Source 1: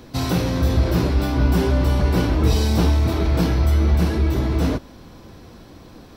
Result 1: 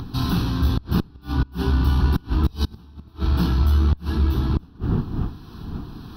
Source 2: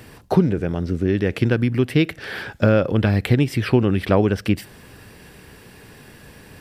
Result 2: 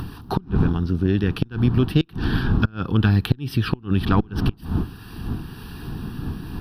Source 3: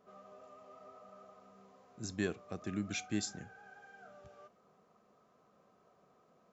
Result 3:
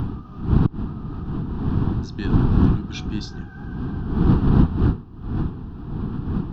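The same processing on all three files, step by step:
wind noise 240 Hz -26 dBFS; fixed phaser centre 2100 Hz, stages 6; in parallel at -0.5 dB: upward compressor, threshold -24 dBFS; on the sum: flipped gate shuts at -3 dBFS, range -29 dB; added harmonics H 2 -18 dB, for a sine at -2.5 dBFS; match loudness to -23 LUFS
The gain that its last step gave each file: -6.0, -3.5, +0.5 dB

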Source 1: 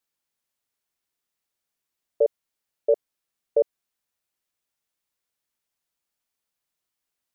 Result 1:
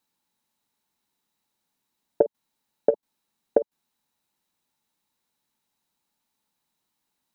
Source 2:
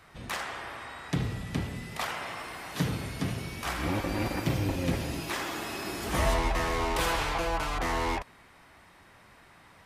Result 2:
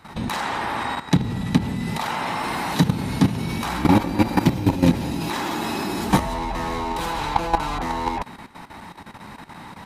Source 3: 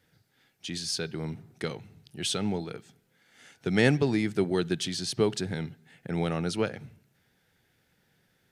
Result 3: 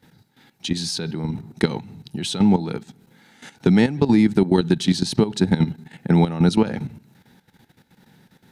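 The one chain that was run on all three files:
compressor 12:1, threshold -28 dBFS; small resonant body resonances 210/870/3900 Hz, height 11 dB, ringing for 20 ms; level quantiser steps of 13 dB; normalise peaks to -3 dBFS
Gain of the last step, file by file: +11.0, +13.0, +12.0 dB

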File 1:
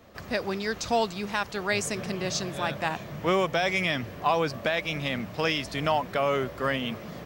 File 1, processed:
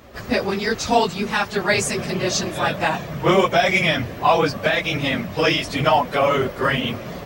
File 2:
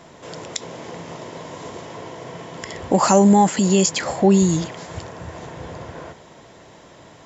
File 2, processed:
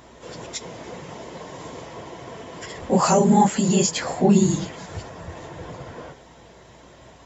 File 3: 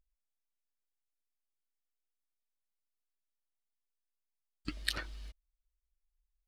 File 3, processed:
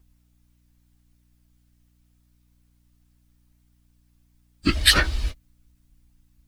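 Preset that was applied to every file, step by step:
phase scrambler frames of 50 ms; hum 60 Hz, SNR 33 dB; match loudness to -20 LUFS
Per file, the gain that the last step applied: +8.0, -2.5, +20.0 dB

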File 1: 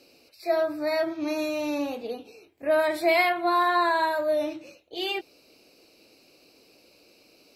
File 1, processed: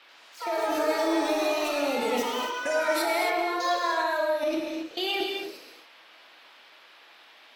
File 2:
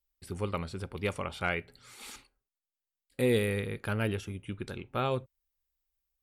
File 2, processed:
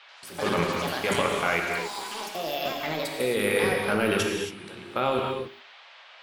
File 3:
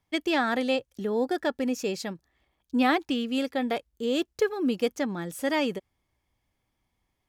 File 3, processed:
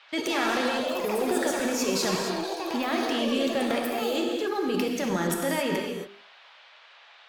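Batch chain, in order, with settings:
gate with hold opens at -48 dBFS; HPF 250 Hz 12 dB/oct; notches 50/100/150/200/250/300/350/400 Hz; compressor 5:1, threshold -29 dBFS; transient shaper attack -4 dB, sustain +9 dB; level quantiser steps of 19 dB; band noise 580–3700 Hz -65 dBFS; echoes that change speed 86 ms, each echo +6 st, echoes 3, each echo -6 dB; non-linear reverb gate 0.3 s flat, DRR 0.5 dB; MP3 96 kbps 48000 Hz; match loudness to -27 LUFS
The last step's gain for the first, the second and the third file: +9.0, +12.5, +9.5 dB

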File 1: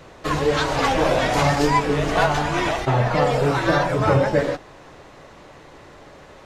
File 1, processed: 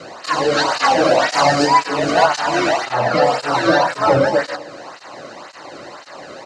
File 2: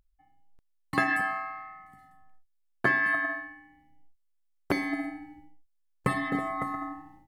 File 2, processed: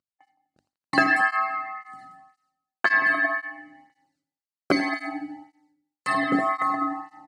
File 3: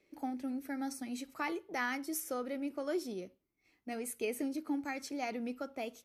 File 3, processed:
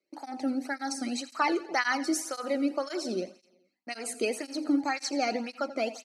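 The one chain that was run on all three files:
notch 3400 Hz, Q 7.1; gate with hold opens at -53 dBFS; notches 50/100/150/200/250/300 Hz; in parallel at +2.5 dB: compressor, threshold -33 dBFS; on the sum: speaker cabinet 100–8700 Hz, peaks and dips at 150 Hz -3 dB, 430 Hz -7 dB, 2300 Hz -4 dB, 4400 Hz +6 dB; on a send: feedback echo 84 ms, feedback 56%, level -16 dB; on the sum: tape flanging out of phase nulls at 1.9 Hz, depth 1.2 ms; gain +6.5 dB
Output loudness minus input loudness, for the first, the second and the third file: +4.0, +6.0, +8.0 LU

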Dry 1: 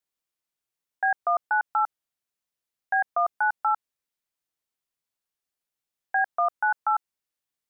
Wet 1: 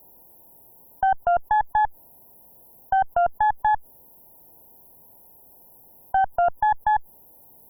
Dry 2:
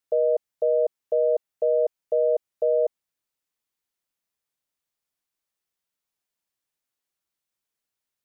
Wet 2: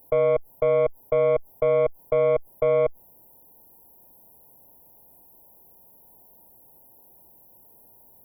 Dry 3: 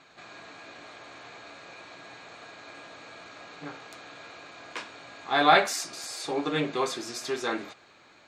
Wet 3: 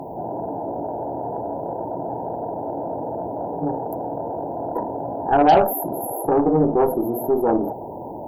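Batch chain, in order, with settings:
brick-wall FIR band-stop 1000–11000 Hz; added harmonics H 3 -33 dB, 4 -38 dB, 8 -24 dB, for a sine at -9 dBFS; fast leveller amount 50%; match loudness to -23 LUFS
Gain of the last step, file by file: +7.0, +1.5, +6.5 dB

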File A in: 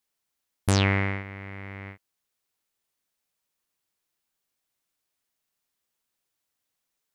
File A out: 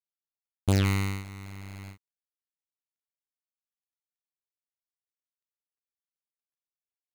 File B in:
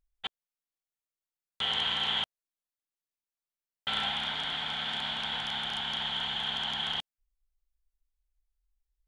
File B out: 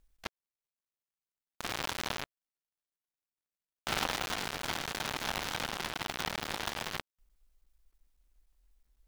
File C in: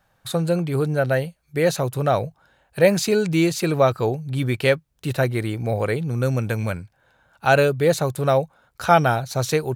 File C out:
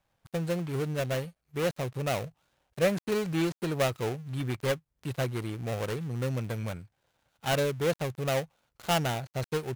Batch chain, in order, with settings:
switching dead time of 0.28 ms; normalise peaks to -12 dBFS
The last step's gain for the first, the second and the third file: -0.5, +10.5, -9.0 dB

